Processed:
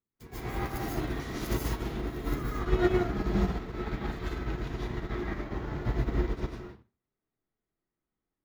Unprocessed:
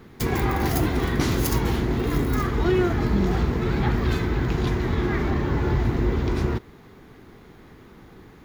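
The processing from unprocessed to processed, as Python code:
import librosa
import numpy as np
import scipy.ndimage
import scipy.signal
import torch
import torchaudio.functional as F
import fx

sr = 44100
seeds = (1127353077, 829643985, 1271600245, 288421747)

y = fx.rev_freeverb(x, sr, rt60_s=0.61, hf_ratio=0.7, predelay_ms=105, drr_db=-5.5)
y = fx.upward_expand(y, sr, threshold_db=-38.0, expansion=2.5)
y = F.gain(torch.from_numpy(y), -8.0).numpy()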